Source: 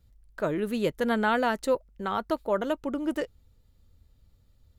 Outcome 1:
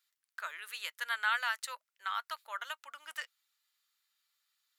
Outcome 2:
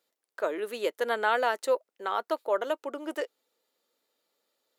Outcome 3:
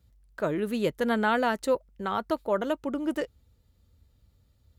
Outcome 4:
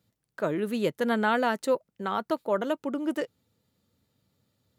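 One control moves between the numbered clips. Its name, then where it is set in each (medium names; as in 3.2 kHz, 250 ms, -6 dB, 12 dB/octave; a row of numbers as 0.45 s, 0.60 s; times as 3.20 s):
high-pass, cutoff frequency: 1.3 kHz, 390 Hz, 42 Hz, 130 Hz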